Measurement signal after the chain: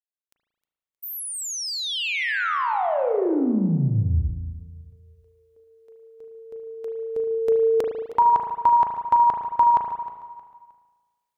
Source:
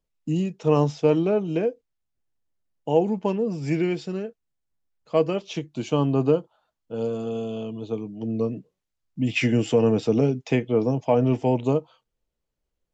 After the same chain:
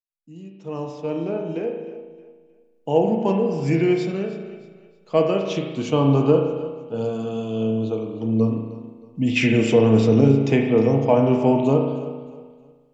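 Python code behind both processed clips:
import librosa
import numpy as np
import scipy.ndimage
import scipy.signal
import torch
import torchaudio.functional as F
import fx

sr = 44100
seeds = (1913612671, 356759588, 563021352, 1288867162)

y = fx.fade_in_head(x, sr, length_s=3.51)
y = fx.echo_feedback(y, sr, ms=312, feedback_pct=34, wet_db=-16.0)
y = fx.rev_spring(y, sr, rt60_s=1.3, pass_ms=(36,), chirp_ms=55, drr_db=2.5)
y = F.gain(torch.from_numpy(y), 2.5).numpy()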